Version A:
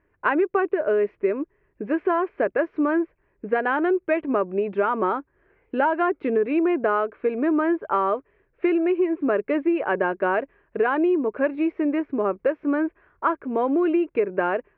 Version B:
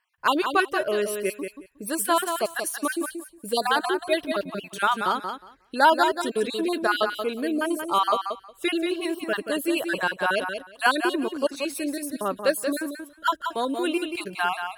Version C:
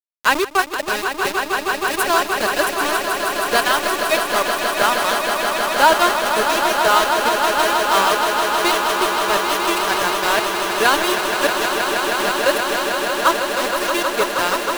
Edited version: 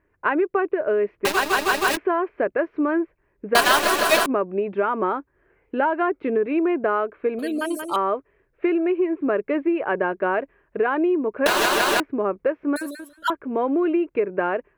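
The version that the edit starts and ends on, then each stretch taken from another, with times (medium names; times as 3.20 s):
A
1.25–1.97 s: from C
3.55–4.26 s: from C
7.39–7.96 s: from B
11.46–12.00 s: from C
12.76–13.30 s: from B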